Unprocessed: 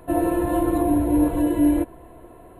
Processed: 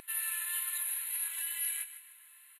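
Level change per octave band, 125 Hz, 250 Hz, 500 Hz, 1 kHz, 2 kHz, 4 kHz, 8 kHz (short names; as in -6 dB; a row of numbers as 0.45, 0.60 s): under -40 dB, under -40 dB, under -40 dB, -27.0 dB, -2.0 dB, n/a, +9.0 dB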